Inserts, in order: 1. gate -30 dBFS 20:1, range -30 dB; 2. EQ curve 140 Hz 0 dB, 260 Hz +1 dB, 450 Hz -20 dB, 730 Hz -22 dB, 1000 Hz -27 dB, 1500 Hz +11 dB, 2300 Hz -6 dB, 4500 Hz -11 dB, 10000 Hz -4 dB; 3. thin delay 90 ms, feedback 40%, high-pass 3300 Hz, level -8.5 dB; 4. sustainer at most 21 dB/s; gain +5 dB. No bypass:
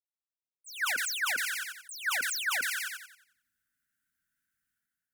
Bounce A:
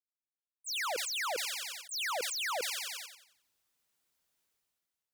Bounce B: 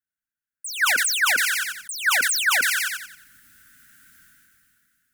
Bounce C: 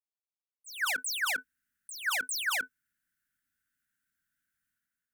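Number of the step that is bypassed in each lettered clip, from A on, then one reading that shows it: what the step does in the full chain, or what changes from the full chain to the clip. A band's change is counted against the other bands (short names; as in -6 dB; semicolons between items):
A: 2, 500 Hz band +12.5 dB; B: 1, momentary loudness spread change +2 LU; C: 3, momentary loudness spread change +4 LU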